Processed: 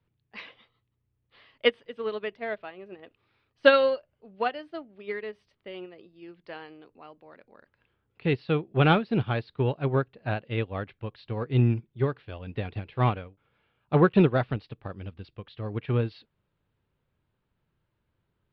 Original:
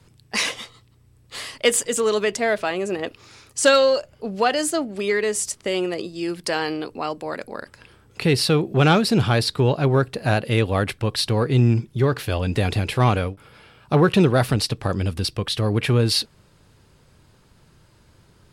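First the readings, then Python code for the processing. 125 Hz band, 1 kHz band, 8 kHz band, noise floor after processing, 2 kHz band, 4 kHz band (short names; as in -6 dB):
-7.0 dB, -6.5 dB, under -40 dB, -78 dBFS, -7.0 dB, -13.0 dB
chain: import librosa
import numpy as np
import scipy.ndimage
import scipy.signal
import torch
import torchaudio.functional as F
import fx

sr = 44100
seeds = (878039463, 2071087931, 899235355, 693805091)

y = scipy.signal.sosfilt(scipy.signal.cheby2(4, 40, 6700.0, 'lowpass', fs=sr, output='sos'), x)
y = fx.upward_expand(y, sr, threshold_db=-26.0, expansion=2.5)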